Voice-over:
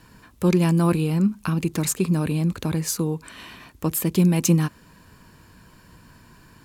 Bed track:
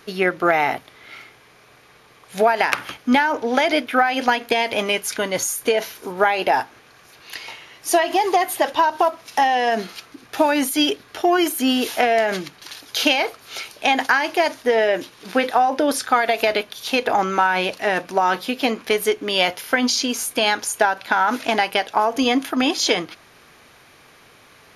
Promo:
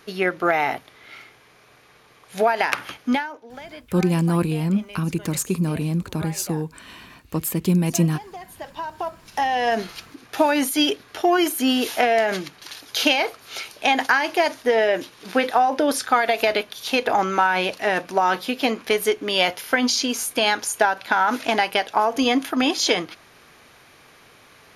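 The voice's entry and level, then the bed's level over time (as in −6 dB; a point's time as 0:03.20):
3.50 s, −1.0 dB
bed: 0:03.10 −2.5 dB
0:03.41 −21 dB
0:08.33 −21 dB
0:09.70 −1 dB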